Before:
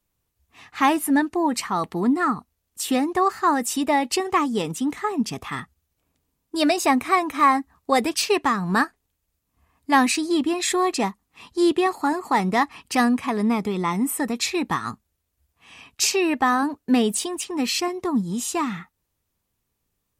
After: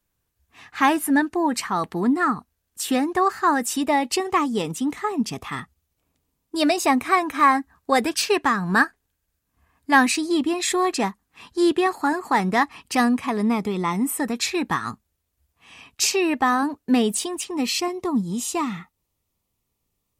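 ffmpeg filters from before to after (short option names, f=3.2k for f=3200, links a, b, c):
-af "asetnsamples=n=441:p=0,asendcmd='3.82 equalizer g -1.5;7.06 equalizer g 8;10.07 equalizer g -2;10.85 equalizer g 8;12.64 equalizer g -0.5;14.25 equalizer g 7;14.84 equalizer g -0.5;17.49 equalizer g -10.5',equalizer=f=1.6k:t=o:w=0.23:g=6"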